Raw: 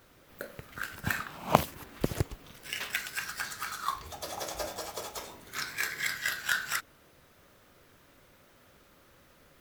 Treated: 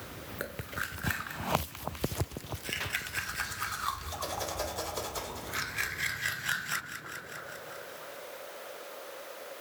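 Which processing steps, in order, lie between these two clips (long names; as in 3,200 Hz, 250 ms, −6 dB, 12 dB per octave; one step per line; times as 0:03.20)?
high-pass filter sweep 72 Hz → 540 Hz, 0:06.03–0:07.43
echo with a time of its own for lows and highs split 1,300 Hz, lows 324 ms, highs 201 ms, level −12.5 dB
multiband upward and downward compressor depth 70%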